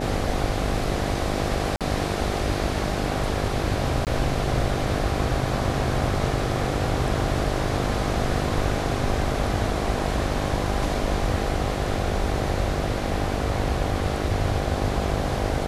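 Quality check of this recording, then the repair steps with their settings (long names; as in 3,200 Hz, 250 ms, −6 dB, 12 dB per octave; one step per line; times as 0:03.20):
mains buzz 50 Hz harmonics 16 −29 dBFS
0:01.76–0:01.81: drop-out 47 ms
0:04.05–0:04.07: drop-out 18 ms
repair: hum removal 50 Hz, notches 16
repair the gap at 0:01.76, 47 ms
repair the gap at 0:04.05, 18 ms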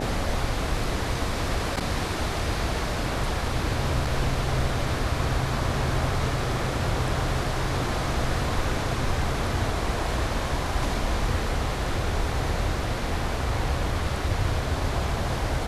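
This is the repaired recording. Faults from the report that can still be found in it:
none of them is left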